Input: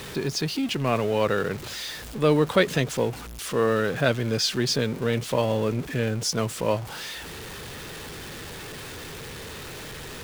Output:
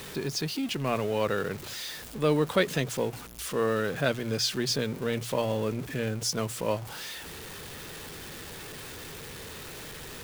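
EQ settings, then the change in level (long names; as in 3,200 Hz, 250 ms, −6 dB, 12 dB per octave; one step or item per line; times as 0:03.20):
high-shelf EQ 8,900 Hz +6 dB
mains-hum notches 60/120 Hz
−4.5 dB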